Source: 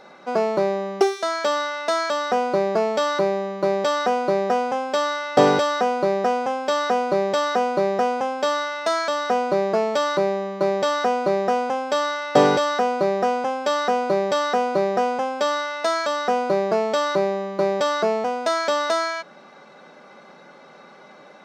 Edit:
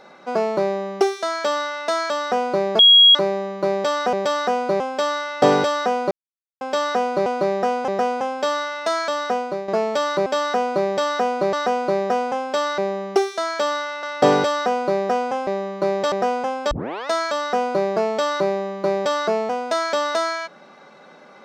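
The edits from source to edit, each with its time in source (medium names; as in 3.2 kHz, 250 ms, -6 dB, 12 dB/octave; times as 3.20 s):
0.63–1.88 s: copy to 12.16 s
2.79–3.15 s: bleep 3.3 kHz -7 dBFS
4.13–4.75 s: swap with 7.21–7.88 s
6.06–6.56 s: mute
9.24–9.68 s: fade out, to -10.5 dB
10.26–10.91 s: swap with 13.60–14.87 s
15.46 s: tape start 0.37 s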